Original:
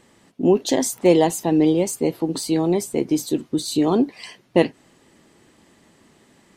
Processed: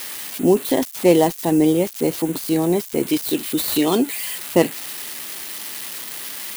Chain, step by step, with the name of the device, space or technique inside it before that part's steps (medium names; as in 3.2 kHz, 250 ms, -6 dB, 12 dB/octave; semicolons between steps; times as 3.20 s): 3.07–4.15 s: frequency weighting D; budget class-D amplifier (dead-time distortion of 0.084 ms; zero-crossing glitches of -16 dBFS); trim +1 dB